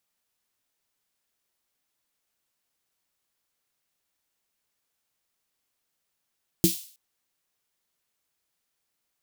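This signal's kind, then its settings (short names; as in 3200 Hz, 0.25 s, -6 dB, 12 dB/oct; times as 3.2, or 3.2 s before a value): snare drum length 0.32 s, tones 180 Hz, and 330 Hz, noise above 3200 Hz, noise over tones -7 dB, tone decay 0.14 s, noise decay 0.48 s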